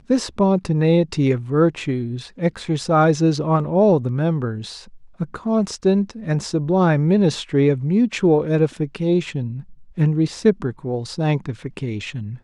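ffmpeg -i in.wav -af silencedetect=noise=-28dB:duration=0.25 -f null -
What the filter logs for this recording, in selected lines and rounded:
silence_start: 4.78
silence_end: 5.20 | silence_duration: 0.43
silence_start: 9.61
silence_end: 9.98 | silence_duration: 0.37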